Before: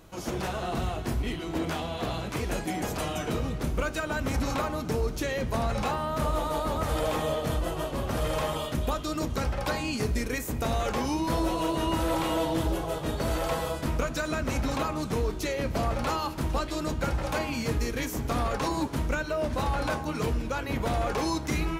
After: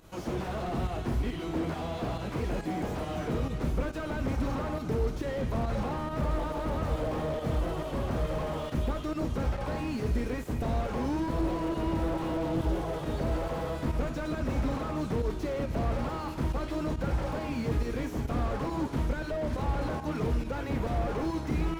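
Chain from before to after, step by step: pump 138 bpm, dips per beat 1, -10 dB, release 87 ms; slew limiter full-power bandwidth 18 Hz

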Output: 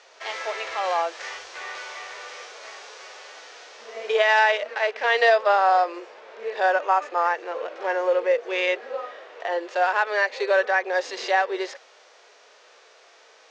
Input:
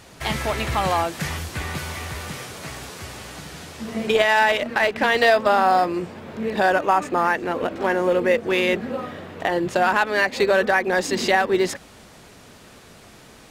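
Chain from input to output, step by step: harmonic-percussive split percussive -10 dB; elliptic band-pass 470–6200 Hz, stop band 40 dB

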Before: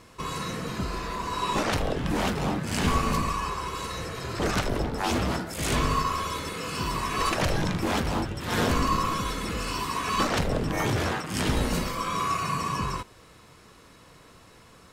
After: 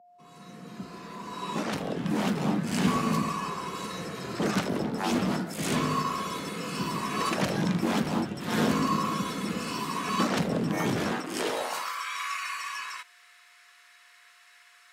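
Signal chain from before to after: opening faded in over 2.51 s; whine 710 Hz -52 dBFS; high-pass sweep 190 Hz -> 1800 Hz, 11.1–12.06; gain -3 dB

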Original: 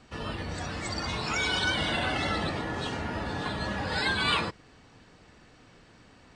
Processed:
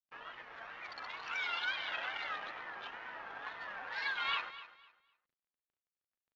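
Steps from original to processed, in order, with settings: Wiener smoothing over 9 samples; HPF 1300 Hz 12 dB/oct; in parallel at 0 dB: compressor, threshold -47 dBFS, peak gain reduction 21.5 dB; on the sum: crossover distortion -50.5 dBFS; wow and flutter 120 cents; hard clip -19 dBFS, distortion -27 dB; air absorption 280 m; on a send: feedback echo 0.252 s, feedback 24%, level -15 dB; on the sum: downsampling 16000 Hz; gain -3 dB

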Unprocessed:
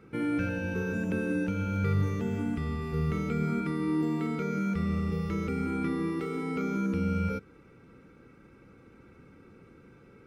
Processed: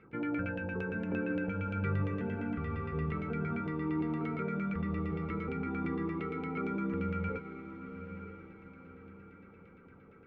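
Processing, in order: LFO low-pass saw down 8.7 Hz 650–2800 Hz; diffused feedback echo 0.952 s, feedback 42%, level -10.5 dB; gain -6 dB

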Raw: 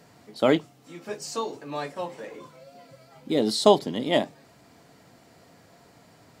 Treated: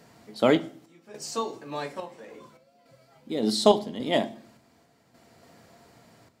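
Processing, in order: random-step tremolo, depth 80%; reverb RT60 0.50 s, pre-delay 4 ms, DRR 11.5 dB

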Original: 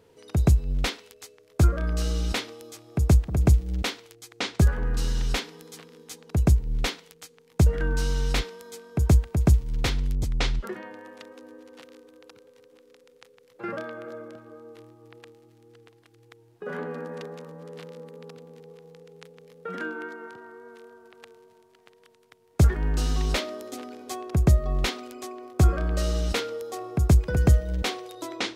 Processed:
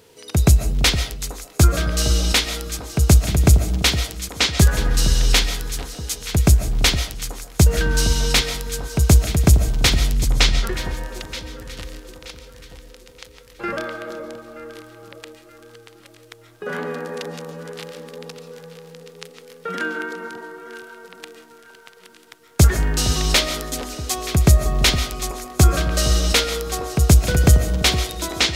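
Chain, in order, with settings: high shelf 2200 Hz +11.5 dB; echo with dull and thin repeats by turns 0.463 s, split 1100 Hz, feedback 63%, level -10.5 dB; on a send at -10 dB: reverb RT60 0.35 s, pre-delay 0.1 s; on the sum: gain +5 dB

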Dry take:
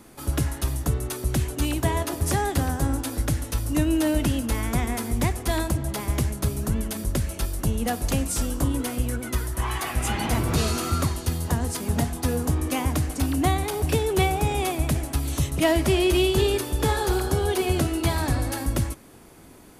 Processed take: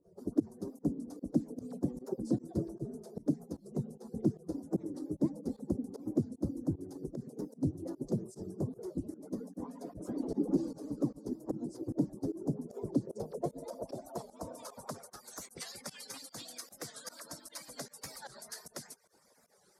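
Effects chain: median-filter separation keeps percussive; EQ curve 570 Hz 0 dB, 2800 Hz -23 dB, 5000 Hz +6 dB; in parallel at +2 dB: limiter -21 dBFS, peak gain reduction 9 dB; on the sum: band-pass sweep 300 Hz -> 1900 Hz, 12.75–15.63; pump 151 bpm, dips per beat 1, -22 dB, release 0.102 s; record warp 45 rpm, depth 160 cents

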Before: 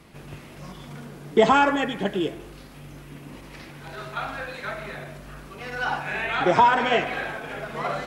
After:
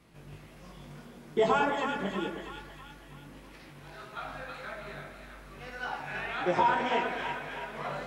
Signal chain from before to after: chorus 1.7 Hz, delay 16.5 ms, depth 4.5 ms; split-band echo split 860 Hz, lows 0.106 s, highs 0.323 s, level -6 dB; gain -6.5 dB

